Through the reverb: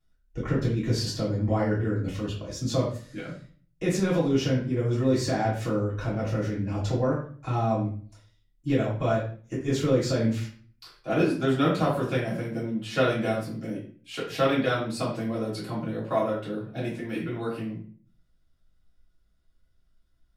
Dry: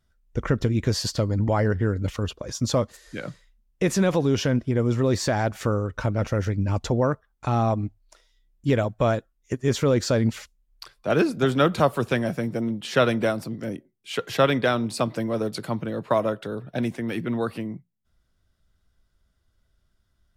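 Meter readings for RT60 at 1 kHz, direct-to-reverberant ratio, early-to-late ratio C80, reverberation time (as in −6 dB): 0.45 s, −8.0 dB, 9.0 dB, 0.45 s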